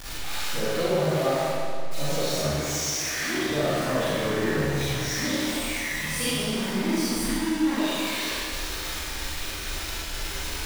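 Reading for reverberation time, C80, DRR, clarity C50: 2.1 s, −3.0 dB, −11.0 dB, −5.5 dB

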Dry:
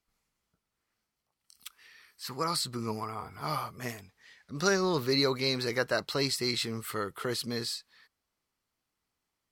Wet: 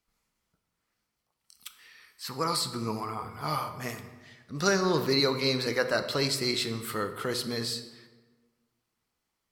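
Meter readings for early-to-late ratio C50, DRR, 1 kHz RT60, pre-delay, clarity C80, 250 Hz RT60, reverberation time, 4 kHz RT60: 10.5 dB, 7.5 dB, 1.3 s, 3 ms, 12.0 dB, 1.5 s, 1.4 s, 0.90 s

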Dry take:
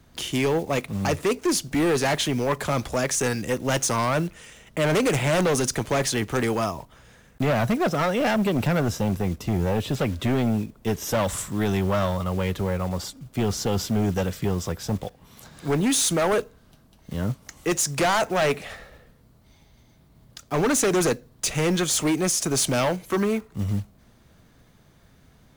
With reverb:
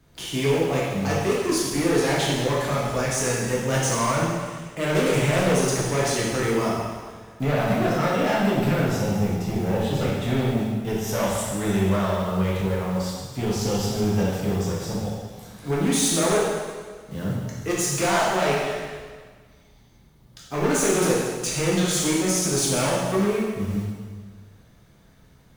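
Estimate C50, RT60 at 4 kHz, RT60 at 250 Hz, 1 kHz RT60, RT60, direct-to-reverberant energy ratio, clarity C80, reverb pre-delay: −0.5 dB, 1.5 s, 1.5 s, 1.6 s, 1.6 s, −5.5 dB, 1.5 dB, 5 ms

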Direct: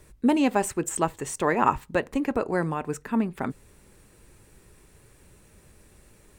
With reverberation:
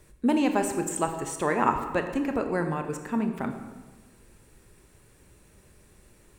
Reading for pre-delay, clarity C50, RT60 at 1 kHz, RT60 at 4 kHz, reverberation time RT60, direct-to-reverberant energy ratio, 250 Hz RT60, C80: 23 ms, 7.5 dB, 1.3 s, 0.95 s, 1.3 s, 6.0 dB, 1.4 s, 9.0 dB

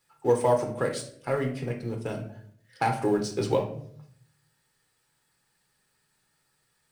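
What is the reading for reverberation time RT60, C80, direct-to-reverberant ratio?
0.60 s, 13.5 dB, 2.0 dB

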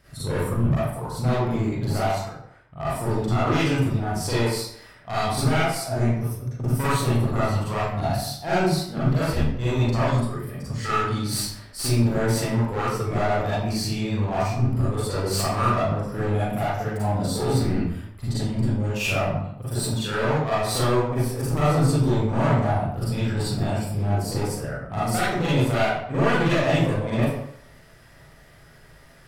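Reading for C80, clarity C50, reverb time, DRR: 2.5 dB, −3.5 dB, 0.70 s, −10.5 dB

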